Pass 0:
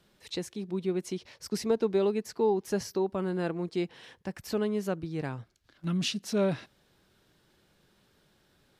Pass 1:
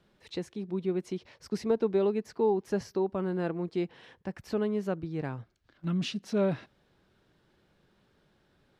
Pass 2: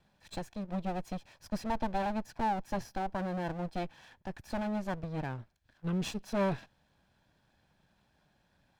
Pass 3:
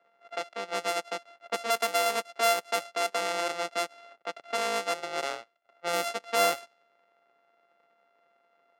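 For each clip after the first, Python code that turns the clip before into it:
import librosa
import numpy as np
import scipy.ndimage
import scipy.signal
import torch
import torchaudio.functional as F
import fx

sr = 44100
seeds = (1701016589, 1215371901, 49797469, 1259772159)

y1 = fx.lowpass(x, sr, hz=2300.0, slope=6)
y2 = fx.lower_of_two(y1, sr, delay_ms=1.2)
y2 = F.gain(torch.from_numpy(y2), -1.5).numpy()
y3 = np.r_[np.sort(y2[:len(y2) // 64 * 64].reshape(-1, 64), axis=1).ravel(), y2[len(y2) // 64 * 64:]]
y3 = fx.env_lowpass(y3, sr, base_hz=2000.0, full_db=-28.0)
y3 = scipy.signal.sosfilt(scipy.signal.bessel(4, 520.0, 'highpass', norm='mag', fs=sr, output='sos'), y3)
y3 = F.gain(torch.from_numpy(y3), 8.0).numpy()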